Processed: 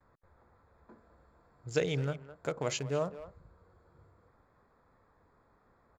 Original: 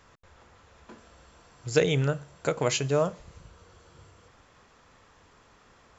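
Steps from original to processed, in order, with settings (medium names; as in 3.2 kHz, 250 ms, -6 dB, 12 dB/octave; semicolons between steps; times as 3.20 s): local Wiener filter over 15 samples; gate with hold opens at -57 dBFS; speakerphone echo 210 ms, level -13 dB; trim -7.5 dB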